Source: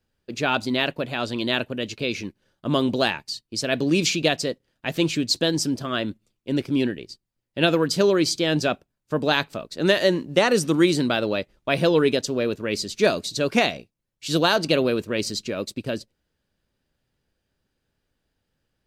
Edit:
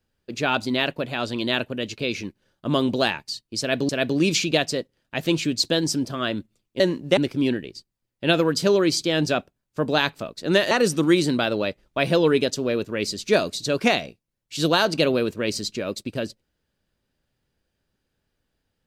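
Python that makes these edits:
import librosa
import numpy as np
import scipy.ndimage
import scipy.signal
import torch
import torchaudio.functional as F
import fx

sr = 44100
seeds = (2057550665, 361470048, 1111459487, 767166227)

y = fx.edit(x, sr, fx.repeat(start_s=3.6, length_s=0.29, count=2),
    fx.move(start_s=10.05, length_s=0.37, to_s=6.51), tone=tone)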